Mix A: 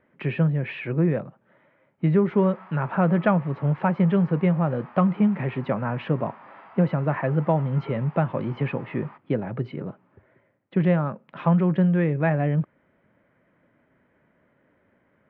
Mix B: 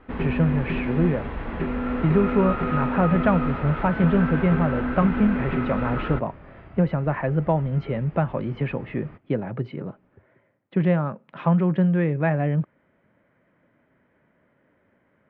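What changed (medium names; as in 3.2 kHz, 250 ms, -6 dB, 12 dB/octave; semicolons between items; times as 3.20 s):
first sound: unmuted; second sound: remove resonant high-pass 920 Hz, resonance Q 3.8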